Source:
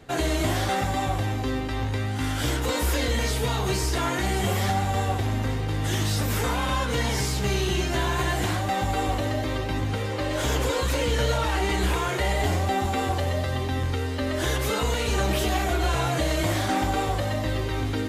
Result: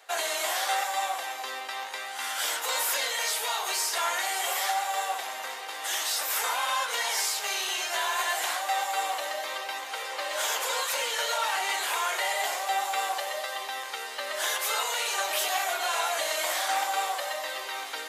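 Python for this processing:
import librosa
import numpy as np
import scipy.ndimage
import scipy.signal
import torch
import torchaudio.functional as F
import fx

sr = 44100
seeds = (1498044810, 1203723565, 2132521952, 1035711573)

y = scipy.signal.sosfilt(scipy.signal.butter(4, 660.0, 'highpass', fs=sr, output='sos'), x)
y = fx.high_shelf(y, sr, hz=7000.0, db=7.0)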